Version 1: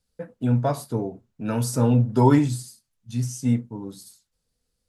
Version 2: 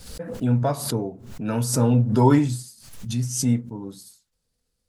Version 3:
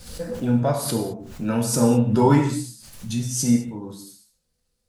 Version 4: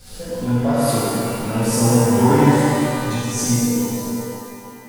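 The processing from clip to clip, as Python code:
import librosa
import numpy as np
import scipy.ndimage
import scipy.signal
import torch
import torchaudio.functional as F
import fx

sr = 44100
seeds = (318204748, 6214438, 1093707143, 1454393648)

y1 = fx.pre_swell(x, sr, db_per_s=73.0)
y2 = fx.rev_gated(y1, sr, seeds[0], gate_ms=240, shape='falling', drr_db=2.0)
y3 = fx.rev_shimmer(y2, sr, seeds[1], rt60_s=2.5, semitones=12, shimmer_db=-8, drr_db=-7.0)
y3 = y3 * 10.0 ** (-3.0 / 20.0)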